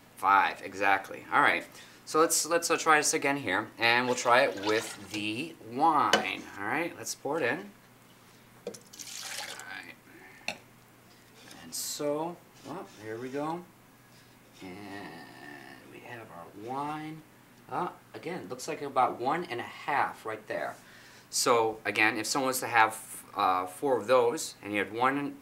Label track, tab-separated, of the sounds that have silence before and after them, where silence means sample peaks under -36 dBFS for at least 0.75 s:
8.670000	10.530000	sound
11.510000	13.600000	sound